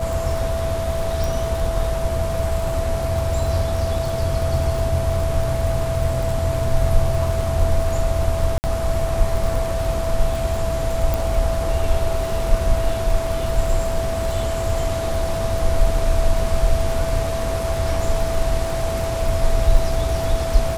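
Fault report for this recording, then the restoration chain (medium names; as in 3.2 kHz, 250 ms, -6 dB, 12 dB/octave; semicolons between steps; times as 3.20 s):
crackle 53 per s -25 dBFS
whine 660 Hz -24 dBFS
1.24 s: pop
8.58–8.64 s: dropout 59 ms
11.14 s: pop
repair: de-click; band-stop 660 Hz, Q 30; interpolate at 8.58 s, 59 ms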